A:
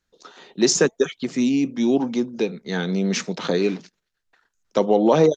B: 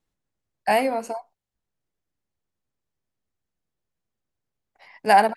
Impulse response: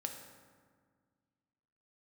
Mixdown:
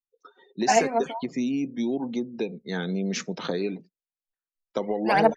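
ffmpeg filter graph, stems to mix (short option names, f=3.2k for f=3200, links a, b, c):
-filter_complex "[0:a]acompressor=threshold=-19dB:ratio=10,volume=-4dB[a];[1:a]acrossover=split=5300[b][c];[c]acompressor=threshold=-45dB:ratio=4:attack=1:release=60[d];[b][d]amix=inputs=2:normalize=0,aphaser=in_gain=1:out_gain=1:delay=4.9:decay=0.7:speed=0.57:type=triangular,volume=-4.5dB[e];[a][e]amix=inputs=2:normalize=0,afftdn=nr=34:nf=-44"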